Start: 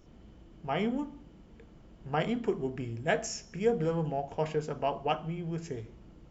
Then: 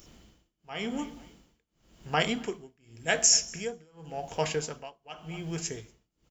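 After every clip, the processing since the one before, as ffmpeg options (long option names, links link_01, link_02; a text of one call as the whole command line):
ffmpeg -i in.wav -af "aecho=1:1:240|480:0.075|0.0247,crystalizer=i=8.5:c=0,tremolo=f=0.9:d=0.98" out.wav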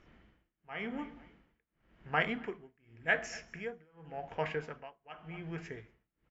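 ffmpeg -i in.wav -af "lowpass=frequency=1900:width_type=q:width=2.3,volume=-6.5dB" out.wav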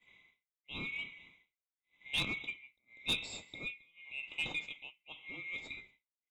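ffmpeg -i in.wav -af "afftfilt=real='real(if(lt(b,920),b+92*(1-2*mod(floor(b/92),2)),b),0)':imag='imag(if(lt(b,920),b+92*(1-2*mod(floor(b/92),2)),b),0)':win_size=2048:overlap=0.75,agate=range=-33dB:threshold=-59dB:ratio=3:detection=peak,asoftclip=type=tanh:threshold=-24.5dB,volume=-1.5dB" out.wav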